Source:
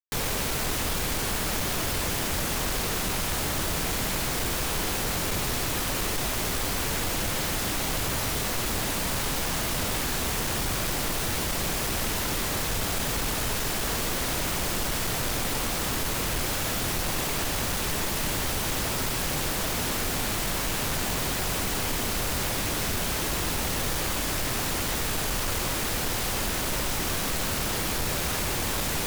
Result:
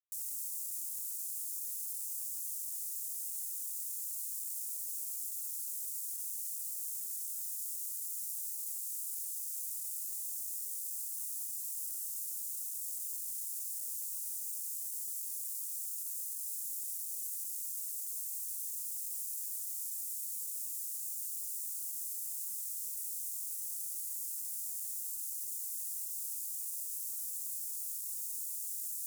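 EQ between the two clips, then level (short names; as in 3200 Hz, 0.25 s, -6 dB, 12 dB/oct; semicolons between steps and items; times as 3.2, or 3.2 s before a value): inverse Chebyshev high-pass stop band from 1400 Hz, stop band 80 dB; -5.5 dB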